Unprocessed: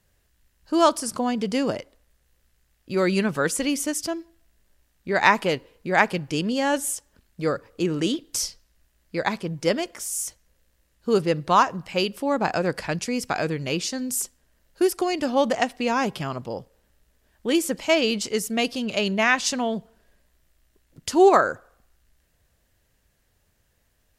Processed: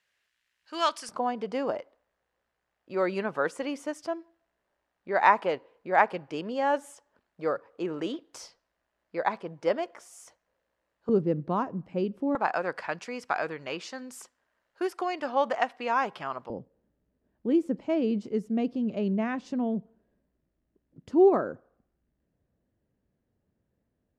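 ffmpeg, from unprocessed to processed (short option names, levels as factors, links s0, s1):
-af "asetnsamples=n=441:p=0,asendcmd='1.09 bandpass f 810;11.09 bandpass f 240;12.35 bandpass f 1100;16.5 bandpass f 240',bandpass=f=2300:t=q:w=1.1:csg=0"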